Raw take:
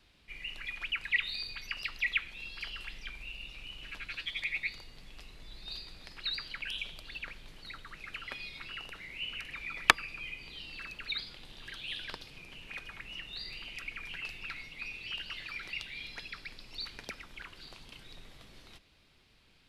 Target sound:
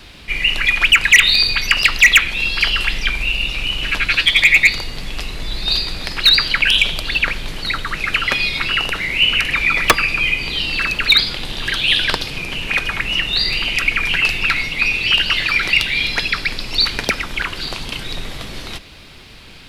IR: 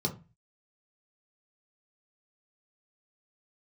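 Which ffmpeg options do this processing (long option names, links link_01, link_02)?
-af "apsyclip=20dB,asoftclip=type=hard:threshold=-9dB,volume=5dB"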